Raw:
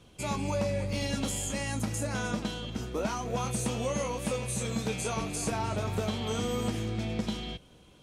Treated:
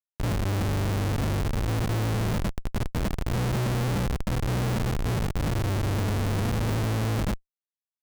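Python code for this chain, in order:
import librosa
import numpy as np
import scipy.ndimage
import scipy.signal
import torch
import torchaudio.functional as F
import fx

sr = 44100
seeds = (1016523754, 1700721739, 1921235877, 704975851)

p1 = np.r_[np.sort(x[:len(x) // 8 * 8].reshape(-1, 8), axis=1).ravel(), x[len(x) // 8 * 8:]]
p2 = fx.peak_eq(p1, sr, hz=120.0, db=14.5, octaves=2.1)
p3 = p2 + fx.echo_single(p2, sr, ms=607, db=-15.0, dry=0)
p4 = fx.schmitt(p3, sr, flips_db=-21.0)
y = p4 * librosa.db_to_amplitude(-2.5)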